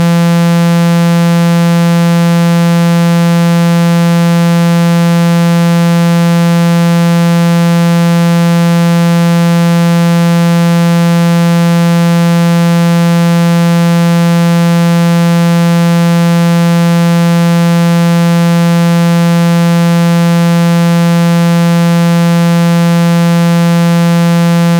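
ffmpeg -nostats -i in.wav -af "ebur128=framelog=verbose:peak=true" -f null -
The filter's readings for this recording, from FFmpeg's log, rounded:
Integrated loudness:
  I:          -8.1 LUFS
  Threshold: -18.1 LUFS
Loudness range:
  LRA:         0.0 LU
  Threshold: -28.1 LUFS
  LRA low:    -8.1 LUFS
  LRA high:   -8.1 LUFS
True peak:
  Peak:       -5.5 dBFS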